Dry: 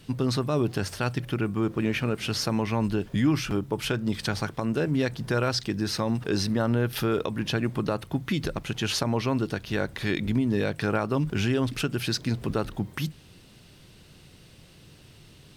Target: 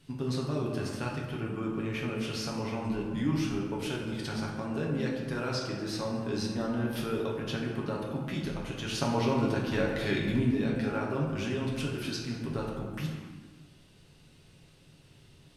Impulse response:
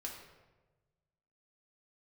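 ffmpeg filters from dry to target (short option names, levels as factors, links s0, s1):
-filter_complex "[0:a]asettb=1/sr,asplit=3[s0][s1][s2];[s0]atrim=end=9.004[s3];[s1]atrim=start=9:end=10.51,asetpts=PTS-STARTPTS,afade=t=in:d=0.004:c=qsin,afade=t=out:st=1.506:d=0.004:c=qsin,acontrast=36[s4];[s2]atrim=start=10.506[s5];[s3][s4]acrossfade=d=0.004:c1=hsin:c2=qsin[s6];[s6][s5]acrossfade=d=0.004:c1=qsin:c2=hsin[s7];[1:a]atrim=start_sample=2205,afade=t=out:st=0.42:d=0.01,atrim=end_sample=18963,asetrate=24255,aresample=44100[s8];[s7][s8]afir=irnorm=-1:irlink=0,volume=0.376"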